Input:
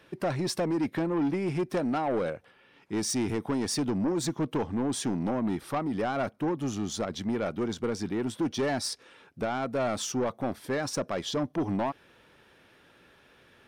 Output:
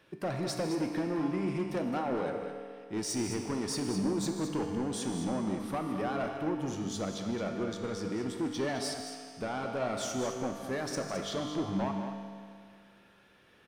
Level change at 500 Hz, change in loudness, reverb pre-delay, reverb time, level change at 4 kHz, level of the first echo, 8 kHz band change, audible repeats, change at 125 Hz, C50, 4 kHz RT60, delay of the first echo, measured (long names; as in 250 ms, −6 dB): −3.5 dB, −3.5 dB, 4 ms, 2.2 s, −3.5 dB, −13.5 dB, −3.5 dB, 2, −3.5 dB, 3.0 dB, 2.1 s, 155 ms